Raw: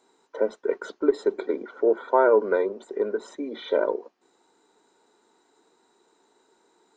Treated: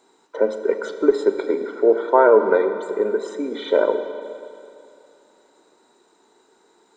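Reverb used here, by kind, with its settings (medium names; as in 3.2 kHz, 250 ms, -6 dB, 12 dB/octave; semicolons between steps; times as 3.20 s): Schroeder reverb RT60 2.6 s, combs from 28 ms, DRR 8 dB; trim +5 dB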